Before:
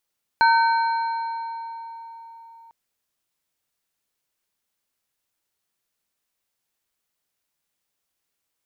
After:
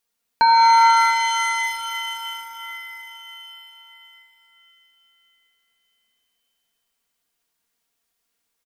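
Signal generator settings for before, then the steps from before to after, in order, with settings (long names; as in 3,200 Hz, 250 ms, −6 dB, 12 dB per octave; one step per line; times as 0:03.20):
inharmonic partials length 2.30 s, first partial 917 Hz, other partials 1,530/2,280/4,170 Hz, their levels −4/−19.5/−14 dB, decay 4.27 s, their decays 2.22/3.03/2.59 s, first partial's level −13.5 dB
comb filter 4.3 ms, depth 68%
reverb with rising layers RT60 3.5 s, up +7 semitones, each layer −2 dB, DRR 3 dB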